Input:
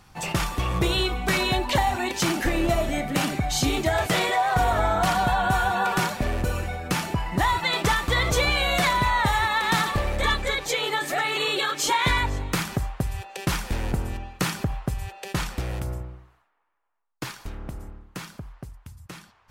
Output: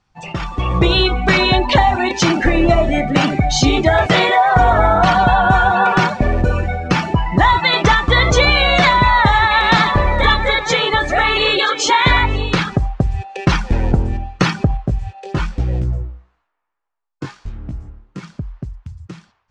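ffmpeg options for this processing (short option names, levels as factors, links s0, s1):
-filter_complex "[0:a]asettb=1/sr,asplit=3[s0][s1][s2];[s0]atrim=end=8.534[s3];[s1]atrim=start=8.53:end=12.7,asetpts=PTS-STARTPTS,afade=t=in:d=0.004:c=qsin,afade=t=out:st=4.166:d=0.004:c=qsin,aecho=1:1:981:0.335,atrim=end_sample=183897[s4];[s2]atrim=start=12.696[s5];[s3][s4]acrossfade=d=0.004:c1=hsin:c2=qsin[s6];[s6][s5]acrossfade=d=0.004:c1=qsin:c2=hsin,asettb=1/sr,asplit=3[s7][s8][s9];[s7]atrim=end=14.774[s10];[s8]atrim=start=14.77:end=18.23,asetpts=PTS-STARTPTS,afade=t=in:d=0.004:c=qsin,afade=t=out:st=3.456:d=0.004:c=qsin,flanger=delay=16.5:depth=4.2:speed=1[s11];[s9]atrim=start=18.226[s12];[s10][s11]acrossfade=d=0.004:c1=hsin:c2=qsin[s13];[s13][s12]acrossfade=d=0.004:c1=qsin:c2=hsin,lowpass=f=7000:w=0.5412,lowpass=f=7000:w=1.3066,afftdn=nr=13:nf=-32,dynaudnorm=f=420:g=3:m=4.22"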